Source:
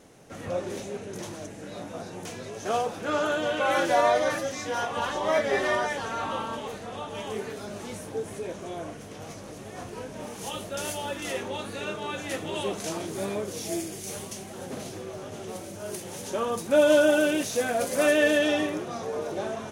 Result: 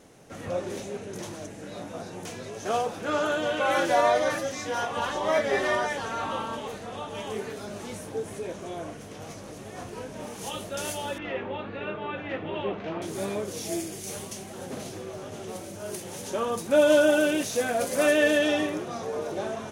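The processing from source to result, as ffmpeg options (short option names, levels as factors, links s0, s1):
-filter_complex "[0:a]asettb=1/sr,asplit=3[s0][s1][s2];[s0]atrim=end=11.184[s3];[s1]atrim=start=11.18:end=13.02,asetpts=PTS-STARTPTS,afade=t=in:d=0.004:c=qsin,afade=t=out:st=1.836:d=0.004:c=qsin,lowpass=f=2800:w=0.5412,lowpass=f=2800:w=1.3066[s4];[s2]atrim=start=13.016[s5];[s3][s4]acrossfade=d=0.004:c1=hsin:c2=qsin[s6];[s6][s5]acrossfade=d=0.004:c1=qsin:c2=hsin"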